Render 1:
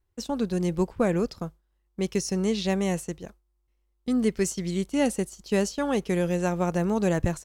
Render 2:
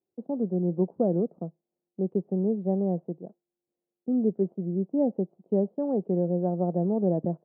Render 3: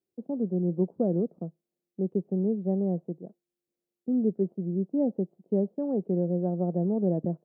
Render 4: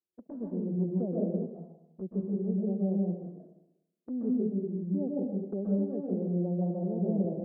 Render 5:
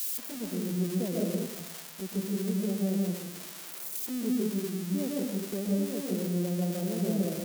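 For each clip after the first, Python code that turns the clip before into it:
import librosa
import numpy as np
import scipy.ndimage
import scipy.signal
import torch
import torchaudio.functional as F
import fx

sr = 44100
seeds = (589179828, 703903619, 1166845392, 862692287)

y1 = scipy.signal.sosfilt(scipy.signal.ellip(3, 1.0, 80, [170.0, 700.0], 'bandpass', fs=sr, output='sos'), x)
y2 = fx.peak_eq(y1, sr, hz=890.0, db=-6.0, octaves=1.4)
y3 = fx.env_flanger(y2, sr, rest_ms=11.6, full_db=-25.0)
y3 = fx.rev_plate(y3, sr, seeds[0], rt60_s=0.87, hf_ratio=0.95, predelay_ms=115, drr_db=-3.5)
y3 = y3 * 10.0 ** (-8.5 / 20.0)
y4 = y3 + 0.5 * 10.0 ** (-24.5 / 20.0) * np.diff(np.sign(y3), prepend=np.sign(y3[:1]))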